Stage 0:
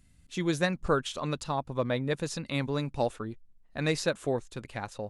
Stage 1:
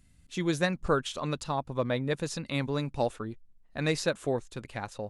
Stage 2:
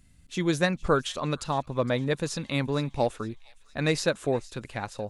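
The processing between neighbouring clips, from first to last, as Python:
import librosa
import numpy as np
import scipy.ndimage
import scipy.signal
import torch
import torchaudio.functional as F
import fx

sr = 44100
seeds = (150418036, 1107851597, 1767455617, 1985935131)

y1 = x
y2 = fx.echo_wet_highpass(y1, sr, ms=461, feedback_pct=52, hz=2000.0, wet_db=-18.5)
y2 = F.gain(torch.from_numpy(y2), 3.0).numpy()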